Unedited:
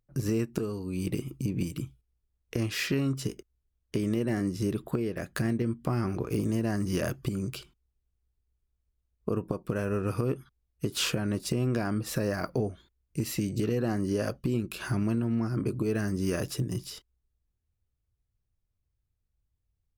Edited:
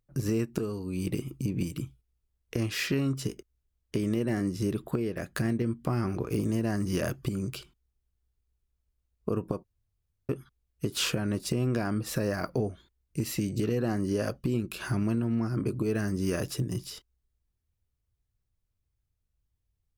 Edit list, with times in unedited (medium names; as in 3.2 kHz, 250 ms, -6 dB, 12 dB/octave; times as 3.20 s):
9.64–10.29 s: room tone